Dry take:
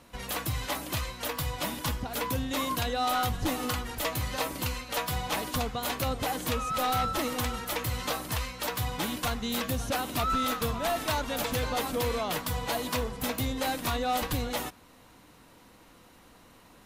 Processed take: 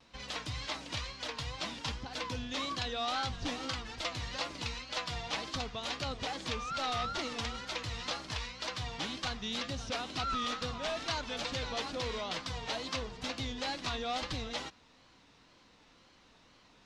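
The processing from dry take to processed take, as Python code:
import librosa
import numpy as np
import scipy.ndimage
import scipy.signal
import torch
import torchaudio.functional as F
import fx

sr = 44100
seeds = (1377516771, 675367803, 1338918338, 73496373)

y = fx.wow_flutter(x, sr, seeds[0], rate_hz=2.1, depth_cents=120.0)
y = scipy.signal.sosfilt(scipy.signal.butter(4, 5400.0, 'lowpass', fs=sr, output='sos'), y)
y = fx.high_shelf(y, sr, hz=2900.0, db=12.0)
y = y * librosa.db_to_amplitude(-8.5)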